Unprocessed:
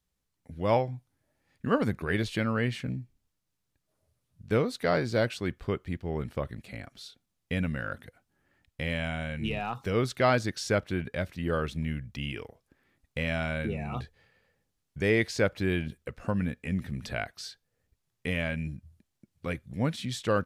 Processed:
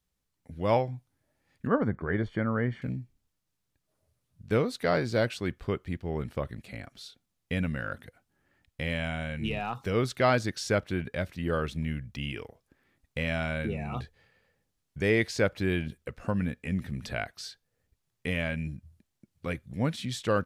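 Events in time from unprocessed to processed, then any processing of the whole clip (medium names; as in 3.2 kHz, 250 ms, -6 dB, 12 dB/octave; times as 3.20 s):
1.67–2.82 s: Savitzky-Golay filter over 41 samples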